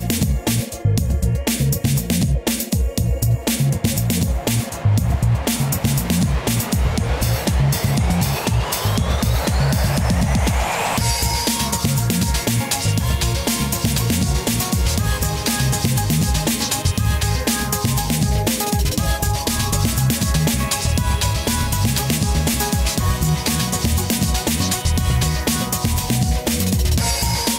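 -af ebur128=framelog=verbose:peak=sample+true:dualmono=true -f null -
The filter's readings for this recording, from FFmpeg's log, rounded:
Integrated loudness:
  I:         -15.9 LUFS
  Threshold: -25.9 LUFS
Loudness range:
  LRA:         0.7 LU
  Threshold: -35.9 LUFS
  LRA low:   -16.3 LUFS
  LRA high:  -15.6 LUFS
Sample peak:
  Peak:       -4.1 dBFS
True peak:
  Peak:       -4.1 dBFS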